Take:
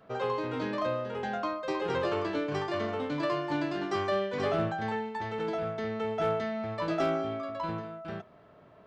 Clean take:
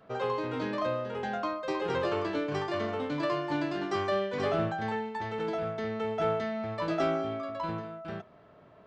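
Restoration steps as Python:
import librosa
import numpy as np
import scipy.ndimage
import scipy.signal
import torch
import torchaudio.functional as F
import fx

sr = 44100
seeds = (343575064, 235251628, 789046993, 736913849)

y = fx.fix_declip(x, sr, threshold_db=-20.0)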